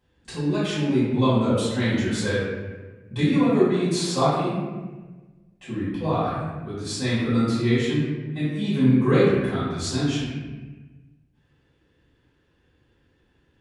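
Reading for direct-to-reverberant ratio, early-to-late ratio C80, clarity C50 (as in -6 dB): -12.5 dB, 1.0 dB, -1.5 dB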